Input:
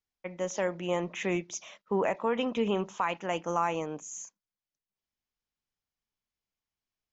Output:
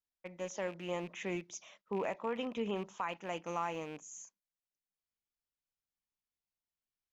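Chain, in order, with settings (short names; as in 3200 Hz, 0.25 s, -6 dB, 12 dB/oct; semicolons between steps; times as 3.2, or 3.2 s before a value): rattling part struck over -42 dBFS, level -34 dBFS; gain -8 dB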